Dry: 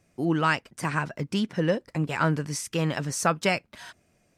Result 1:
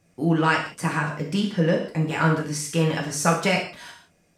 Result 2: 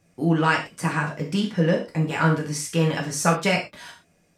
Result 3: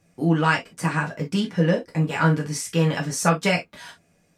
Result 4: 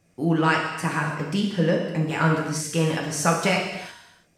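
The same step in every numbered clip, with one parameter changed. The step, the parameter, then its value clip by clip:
reverb whose tail is shaped and stops, gate: 200, 140, 80, 370 milliseconds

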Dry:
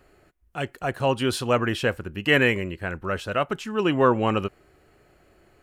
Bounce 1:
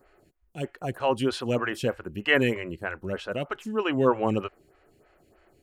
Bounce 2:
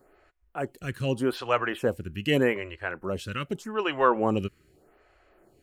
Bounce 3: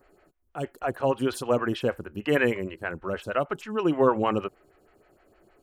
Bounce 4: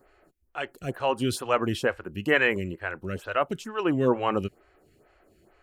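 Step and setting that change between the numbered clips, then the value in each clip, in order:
phaser with staggered stages, speed: 3.2, 0.83, 6.4, 2.2 Hertz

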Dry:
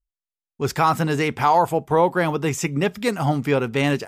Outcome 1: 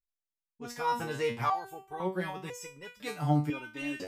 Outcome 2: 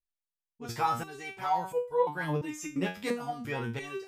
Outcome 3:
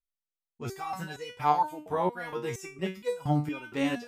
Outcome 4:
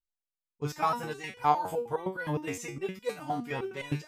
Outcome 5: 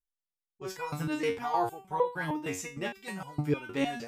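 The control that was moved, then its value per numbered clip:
step-sequenced resonator, speed: 2, 2.9, 4.3, 9.7, 6.5 Hertz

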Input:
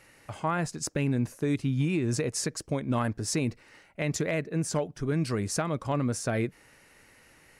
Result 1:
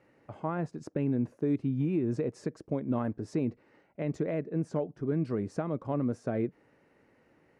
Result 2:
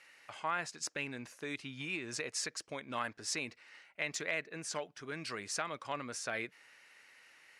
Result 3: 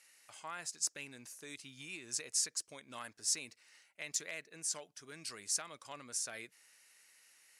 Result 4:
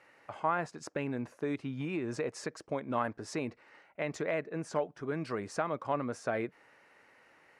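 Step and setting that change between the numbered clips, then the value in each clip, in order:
resonant band-pass, frequency: 320, 2,700, 7,800, 920 Hertz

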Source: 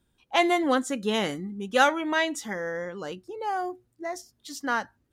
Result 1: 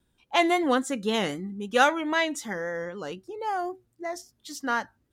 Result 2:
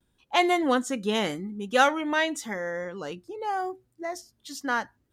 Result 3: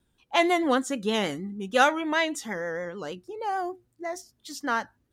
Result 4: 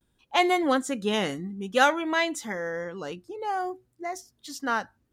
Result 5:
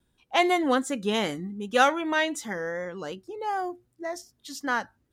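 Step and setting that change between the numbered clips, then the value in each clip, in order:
pitch vibrato, speed: 3.8, 0.86, 6.5, 0.56, 2.6 Hertz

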